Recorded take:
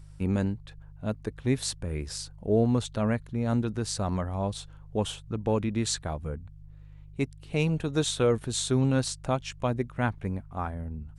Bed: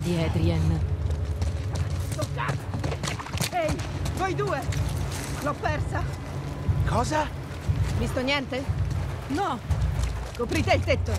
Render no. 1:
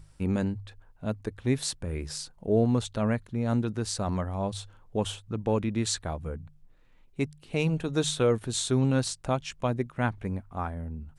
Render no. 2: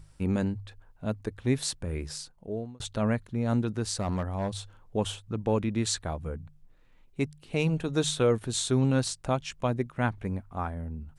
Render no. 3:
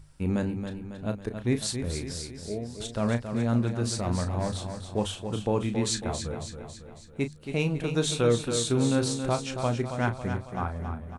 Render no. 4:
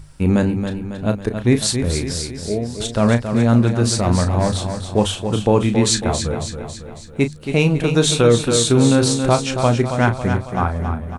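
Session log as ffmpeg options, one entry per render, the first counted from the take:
-af "bandreject=f=50:t=h:w=4,bandreject=f=100:t=h:w=4,bandreject=f=150:t=h:w=4"
-filter_complex "[0:a]asettb=1/sr,asplit=3[a][b][c];[a]atrim=end=3.984[d];[b]atrim=start=3.98:end=4.5,asetpts=PTS-STARTPTS,afade=t=in:d=0.004:c=qsin,afade=t=out:st=0.516:d=0.004:c=qsin,aeval=exprs='clip(val(0),-1,0.0398)':c=same[e];[c]atrim=start=4.496[f];[d][e]acrossfade=d=0.004:c1=hsin:c2=qsin[g];[g][f]acrossfade=d=0.004:c1=qsin:c2=hsin,asplit=2[h][i];[h]atrim=end=2.8,asetpts=PTS-STARTPTS,afade=t=out:st=1.99:d=0.81[j];[i]atrim=start=2.8,asetpts=PTS-STARTPTS,afade=t=in:d=0.004:c=hsin[k];[j][k]concat=n=2:v=0:a=1"
-filter_complex "[0:a]asplit=2[a][b];[b]adelay=34,volume=-9.5dB[c];[a][c]amix=inputs=2:normalize=0,aecho=1:1:275|550|825|1100|1375|1650:0.398|0.211|0.112|0.0593|0.0314|0.0166"
-af "volume=11.5dB,alimiter=limit=-3dB:level=0:latency=1"

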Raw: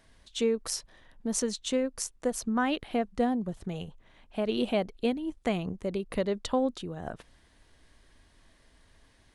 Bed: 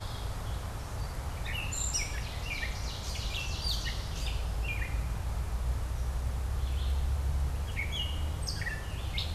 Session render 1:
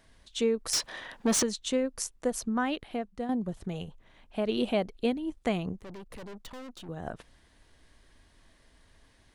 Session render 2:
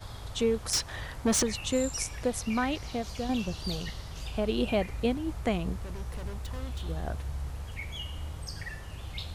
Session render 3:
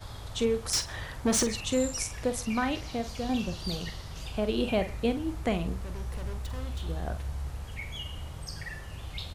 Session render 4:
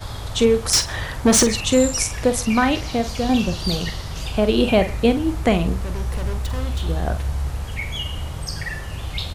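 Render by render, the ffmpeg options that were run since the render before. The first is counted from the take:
-filter_complex "[0:a]asettb=1/sr,asplit=3[a][b][c];[a]atrim=end=0.734[d];[b]atrim=start=0.73:end=1.43,asetpts=PTS-STARTPTS,afade=t=in:d=0.004:c=qsin,afade=t=out:st=0.696:d=0.004:c=qsin,asplit=2[e][f];[f]highpass=f=720:p=1,volume=25dB,asoftclip=type=tanh:threshold=-15.5dB[g];[e][g]amix=inputs=2:normalize=0,lowpass=f=4.9k:p=1,volume=-6dB[h];[c]atrim=start=1.426[i];[d][h]acrossfade=d=0.004:c1=hsin:c2=qsin[j];[j][i]acrossfade=d=0.004:c1=qsin:c2=hsin,asettb=1/sr,asplit=3[k][l][m];[k]atrim=end=5.794[n];[l]atrim=start=5.79:end=6.89,asetpts=PTS-STARTPTS,afade=t=in:d=0.004:c=qsin,afade=t=out:st=1.096:d=0.004:c=qsin,aeval=exprs='(tanh(126*val(0)+0.6)-tanh(0.6))/126':c=same[o];[m]atrim=start=6.886[p];[n][o]acrossfade=d=0.004:c1=hsin:c2=qsin[q];[q][p]acrossfade=d=0.004:c1=qsin:c2=hsin,asplit=2[r][s];[r]atrim=end=3.29,asetpts=PTS-STARTPTS,afade=t=out:st=2.38:d=0.91:silence=0.334965[t];[s]atrim=start=3.29,asetpts=PTS-STARTPTS,afade=t=in:d=0.004:c=hsin:silence=0.334965[u];[t][u]concat=n=2:v=0:a=1"
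-filter_complex "[1:a]volume=-4.5dB[a];[0:a][a]amix=inputs=2:normalize=0"
-filter_complex "[0:a]asplit=2[a][b];[b]adelay=47,volume=-10.5dB[c];[a][c]amix=inputs=2:normalize=0,asplit=2[d][e];[e]adelay=128.3,volume=-24dB,highshelf=f=4k:g=-2.89[f];[d][f]amix=inputs=2:normalize=0"
-af "volume=11dB"

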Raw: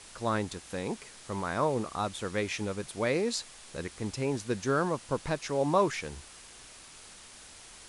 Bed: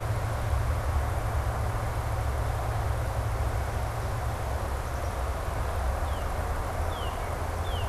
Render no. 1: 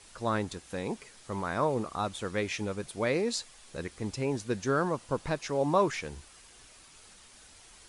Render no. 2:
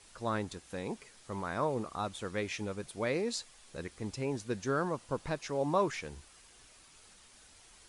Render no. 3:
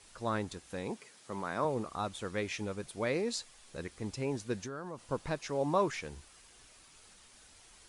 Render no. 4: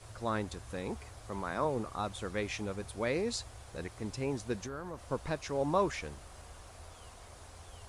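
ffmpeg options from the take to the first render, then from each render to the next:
-af "afftdn=nr=6:nf=-51"
-af "volume=-4dB"
-filter_complex "[0:a]asettb=1/sr,asplit=3[a][b][c];[a]atrim=end=0.904[d];[b]atrim=start=0.9:end=1.65,asetpts=PTS-STARTPTS,afade=t=in:d=0.004:c=qsin,afade=t=out:st=0.746:d=0.004:c=qsin,highpass=140[e];[c]atrim=start=1.646[f];[d][e]acrossfade=d=0.004:c1=hsin:c2=qsin[g];[g][f]acrossfade=d=0.004:c1=qsin:c2=hsin,asettb=1/sr,asplit=3[h][i][j];[h]atrim=end=4.634[k];[i]atrim=start=4.63:end=5.03,asetpts=PTS-STARTPTS,afade=t=in:d=0.004:c=qsin,afade=t=out:st=0.396:d=0.004:c=qsin,acompressor=threshold=-37dB:ratio=10:attack=3.2:release=140:knee=1:detection=peak[l];[j]atrim=start=5.026[m];[k][l]acrossfade=d=0.004:c1=hsin:c2=qsin[n];[n][m]acrossfade=d=0.004:c1=qsin:c2=hsin"
-filter_complex "[1:a]volume=-21.5dB[a];[0:a][a]amix=inputs=2:normalize=0"

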